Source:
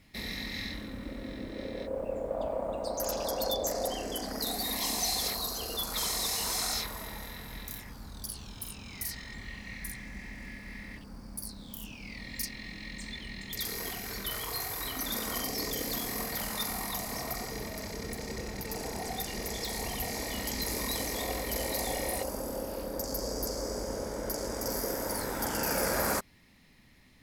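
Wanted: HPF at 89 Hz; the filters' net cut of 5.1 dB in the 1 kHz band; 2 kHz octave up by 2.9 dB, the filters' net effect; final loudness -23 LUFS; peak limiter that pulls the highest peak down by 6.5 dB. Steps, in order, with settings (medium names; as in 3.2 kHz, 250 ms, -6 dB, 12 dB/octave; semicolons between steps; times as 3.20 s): high-pass 89 Hz; peaking EQ 1 kHz -8.5 dB; peaking EQ 2 kHz +5.5 dB; trim +12 dB; peak limiter -12 dBFS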